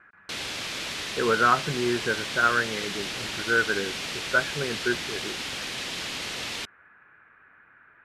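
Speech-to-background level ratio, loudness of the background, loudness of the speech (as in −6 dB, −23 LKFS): 4.5 dB, −31.0 LKFS, −26.5 LKFS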